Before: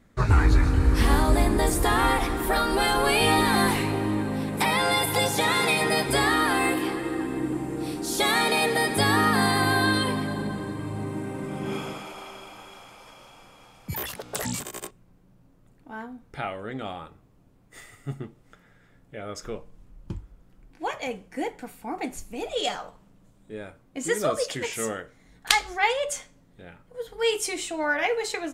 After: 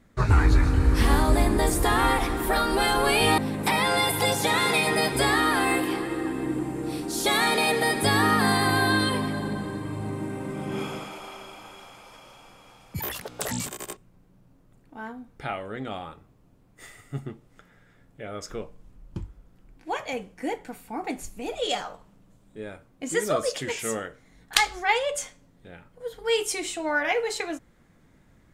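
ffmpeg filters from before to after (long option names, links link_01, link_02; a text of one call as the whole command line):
ffmpeg -i in.wav -filter_complex "[0:a]asplit=2[link_01][link_02];[link_01]atrim=end=3.382[link_03];[link_02]atrim=start=4.318[link_04];[link_03][link_04]acrossfade=duration=0.004:curve1=hsin:curve2=hsin" out.wav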